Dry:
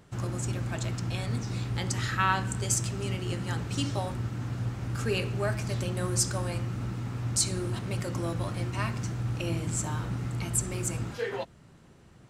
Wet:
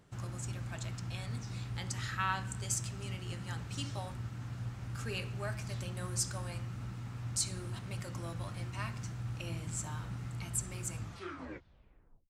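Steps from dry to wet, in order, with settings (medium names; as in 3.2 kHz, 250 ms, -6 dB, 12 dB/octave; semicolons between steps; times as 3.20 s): tape stop on the ending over 1.33 s; dynamic bell 360 Hz, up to -7 dB, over -46 dBFS, Q 0.87; trim -7 dB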